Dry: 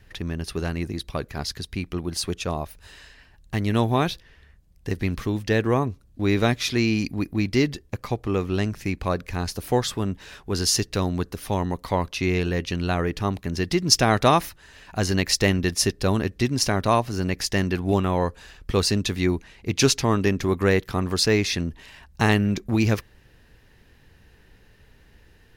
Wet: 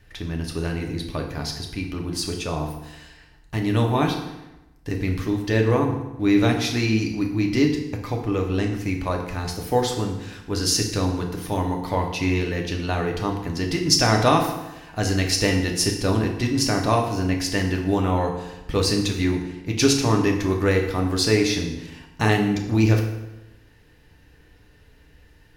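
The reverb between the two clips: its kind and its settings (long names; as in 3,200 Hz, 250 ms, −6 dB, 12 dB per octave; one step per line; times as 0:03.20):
feedback delay network reverb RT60 0.99 s, low-frequency decay 1.1×, high-frequency decay 0.8×, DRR 1 dB
level −2 dB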